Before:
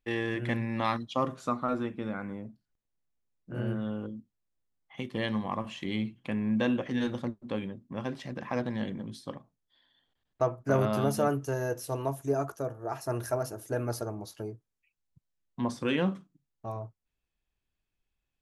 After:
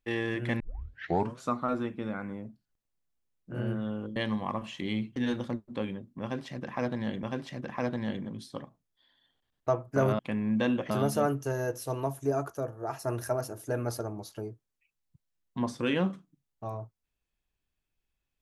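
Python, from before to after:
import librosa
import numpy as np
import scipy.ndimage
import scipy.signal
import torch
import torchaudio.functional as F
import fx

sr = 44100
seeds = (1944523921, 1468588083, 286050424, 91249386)

y = fx.edit(x, sr, fx.tape_start(start_s=0.6, length_s=0.8),
    fx.cut(start_s=4.16, length_s=1.03),
    fx.move(start_s=6.19, length_s=0.71, to_s=10.92),
    fx.repeat(start_s=7.96, length_s=1.01, count=2), tone=tone)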